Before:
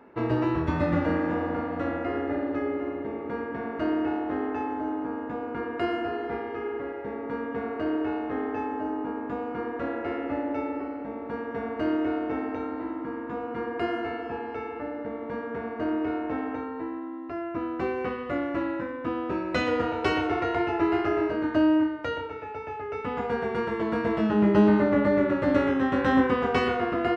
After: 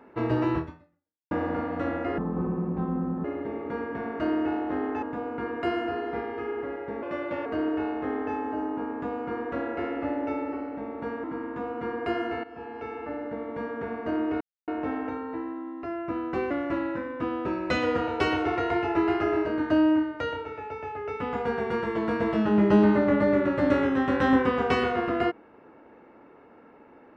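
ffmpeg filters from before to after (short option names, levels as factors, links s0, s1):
-filter_complex "[0:a]asplit=11[s0][s1][s2][s3][s4][s5][s6][s7][s8][s9][s10];[s0]atrim=end=1.31,asetpts=PTS-STARTPTS,afade=t=out:st=0.58:d=0.73:c=exp[s11];[s1]atrim=start=1.31:end=2.184,asetpts=PTS-STARTPTS,afade=t=in:d=0.004:c=hsin[s12];[s2]atrim=start=2.18:end=2.84,asetpts=PTS-STARTPTS,asetrate=27342,aresample=44100,atrim=end_sample=46945,asetpts=PTS-STARTPTS[s13];[s3]atrim=start=2.836:end=4.622[s14];[s4]atrim=start=5.188:end=7.194[s15];[s5]atrim=start=7.19:end=7.73,asetpts=PTS-STARTPTS,asetrate=55125,aresample=44100,atrim=end_sample=19051,asetpts=PTS-STARTPTS[s16];[s6]atrim=start=7.726:end=11.512[s17];[s7]atrim=start=12.968:end=14.17,asetpts=PTS-STARTPTS,afade=t=out:st=1.198:d=0.004:c=hsin:silence=0.211349[s18];[s8]atrim=start=14.17:end=16.14,asetpts=PTS-STARTPTS,afade=t=in:d=0.83:c=qsin:silence=0.211349,afade=t=out:st=1.966:d=0.004:c=hsin,apad=pad_dur=0.27[s19];[s9]atrim=start=16.14:end=17.972,asetpts=PTS-STARTPTS,afade=t=in:d=0.004:c=hsin[s20];[s10]atrim=start=18.348[s21];[s11][s12]concat=n=2:v=0:a=1[s22];[s22][s13]acrossfade=d=0.004:c1=hsin:c2=hsin[s23];[s23][s14]acrossfade=d=0.004:c1=hsin:c2=hsin[s24];[s24][s15]acrossfade=d=0.004:c1=hsin:c2=hsin[s25];[s25][s16]acrossfade=d=0.004:c1=hsin:c2=hsin[s26];[s26][s17]acrossfade=d=0.004:c1=hsin:c2=hsin[s27];[s18][s19][s20]concat=n=3:v=0:a=1[s28];[s27][s28]acrossfade=d=0.004:c1=hsin:c2=hsin[s29];[s29][s21]acrossfade=d=0.004:c1=hsin:c2=hsin"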